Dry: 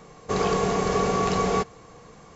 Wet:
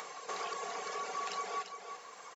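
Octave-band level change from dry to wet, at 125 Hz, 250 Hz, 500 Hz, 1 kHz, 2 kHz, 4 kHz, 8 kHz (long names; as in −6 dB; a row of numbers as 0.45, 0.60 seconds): below −35 dB, −31.0 dB, −19.5 dB, −11.5 dB, −10.0 dB, −10.0 dB, can't be measured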